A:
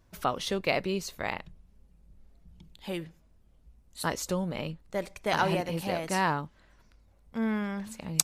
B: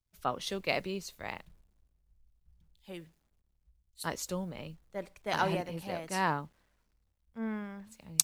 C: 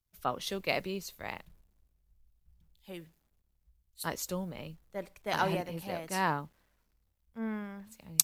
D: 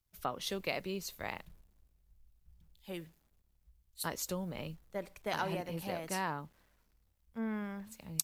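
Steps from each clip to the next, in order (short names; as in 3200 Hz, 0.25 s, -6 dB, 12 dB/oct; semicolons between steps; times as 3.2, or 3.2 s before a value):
bit-crush 10-bit; three-band expander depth 70%; gain -6.5 dB
bell 13000 Hz +8.5 dB 0.31 oct
compressor 2.5:1, threshold -37 dBFS, peak gain reduction 13.5 dB; gain +2 dB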